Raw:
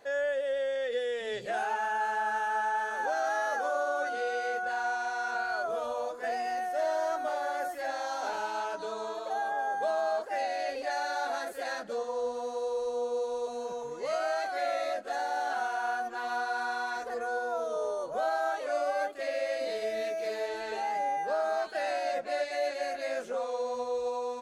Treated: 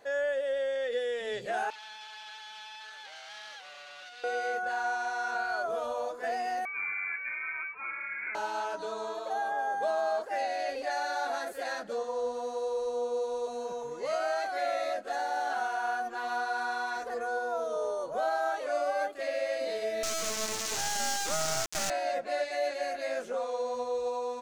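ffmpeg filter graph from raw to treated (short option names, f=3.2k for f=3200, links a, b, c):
-filter_complex "[0:a]asettb=1/sr,asplit=3[a][b][c];[a]atrim=end=1.704[d];[b]atrim=start=1.7:end=4.24,asetpts=PTS-STARTPTS,afade=t=in:d=0.004:c=qsin,afade=t=out:st=2.536:d=0.004:c=qsin,asoftclip=type=hard:threshold=-33dB,bandpass=f=4k:t=q:w=1.3[e];[c]atrim=start=4.236[f];[d][e]acrossfade=d=0.004:c1=hsin:c2=qsin[g];[g][f]acrossfade=d=0.004:c1=qsin:c2=hsin,asettb=1/sr,asplit=3[h][i][j];[h]atrim=end=6.654[k];[i]atrim=start=6.65:end=8.35,asetpts=PTS-STARTPTS,afade=t=in:d=0.004:c=qsin,afade=t=out:st=1.696:d=0.004:c=qsin,highpass=840,lowpass=f=2.6k:t=q:w=0.5098,lowpass=f=2.6k:t=q:w=0.6013,lowpass=f=2.6k:t=q:w=0.9,lowpass=f=2.6k:t=q:w=2.563,afreqshift=-3000[l];[j]atrim=start=8.346[m];[k][l]acrossfade=d=0.004:c1=hsin:c2=qsin[n];[n][m]acrossfade=d=0.004:c1=qsin:c2=hsin,asettb=1/sr,asplit=3[o][p][q];[o]atrim=end=20.034[r];[p]atrim=start=20.03:end=21.9,asetpts=PTS-STARTPTS,afade=t=in:d=0.004:c=qsin,afade=t=out:st=1.866:d=0.004:c=qsin,highpass=96,acrusher=bits=3:dc=4:mix=0:aa=0.000001,equalizer=f=6.4k:t=o:w=1.1:g=14.5[s];[q]atrim=start=21.896[t];[r][s]acrossfade=d=0.004:c1=hsin:c2=qsin[u];[u][t]acrossfade=d=0.004:c1=qsin:c2=hsin"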